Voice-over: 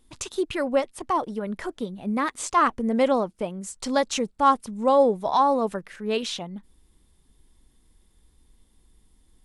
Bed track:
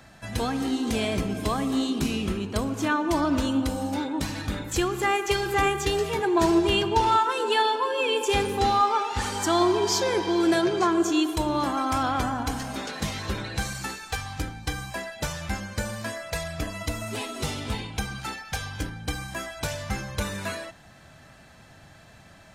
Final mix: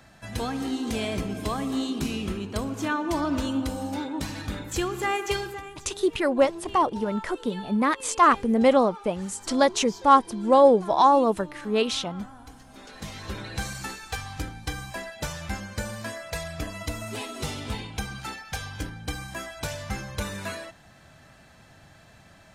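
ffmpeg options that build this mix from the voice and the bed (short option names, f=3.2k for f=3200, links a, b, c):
-filter_complex "[0:a]adelay=5650,volume=2.5dB[a];[1:a]volume=14dB,afade=t=out:st=5.36:d=0.25:silence=0.158489,afade=t=in:st=12.67:d=0.96:silence=0.149624[b];[a][b]amix=inputs=2:normalize=0"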